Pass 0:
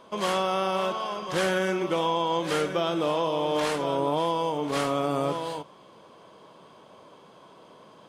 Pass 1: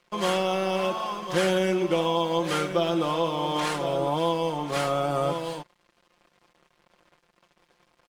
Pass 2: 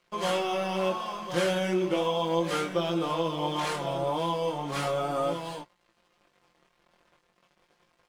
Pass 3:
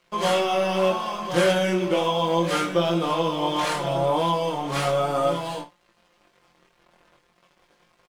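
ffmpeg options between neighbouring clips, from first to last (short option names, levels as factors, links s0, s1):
-af "aeval=exprs='sgn(val(0))*max(abs(val(0))-0.00422,0)':c=same,aecho=1:1:5.7:0.65"
-af "flanger=delay=17:depth=6.1:speed=0.36"
-af "aecho=1:1:23|58:0.398|0.224,volume=1.78"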